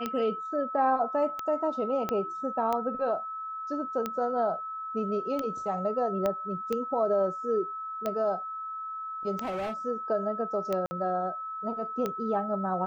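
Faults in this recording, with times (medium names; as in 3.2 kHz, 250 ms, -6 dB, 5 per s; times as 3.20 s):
tick 45 rpm -17 dBFS
whine 1.3 kHz -34 dBFS
2.09 s: pop -16 dBFS
6.26 s: pop -16 dBFS
9.37–9.74 s: clipped -29.5 dBFS
10.86–10.91 s: dropout 50 ms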